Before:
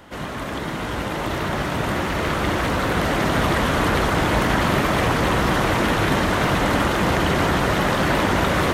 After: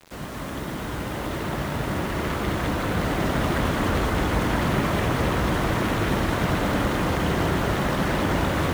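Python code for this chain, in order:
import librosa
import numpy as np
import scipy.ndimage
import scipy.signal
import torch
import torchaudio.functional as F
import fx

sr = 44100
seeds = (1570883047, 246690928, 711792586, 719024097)

p1 = fx.low_shelf(x, sr, hz=400.0, db=5.0)
p2 = fx.quant_dither(p1, sr, seeds[0], bits=6, dither='none')
p3 = p2 + fx.echo_single(p2, sr, ms=209, db=-5.0, dry=0)
y = F.gain(torch.from_numpy(p3), -7.5).numpy()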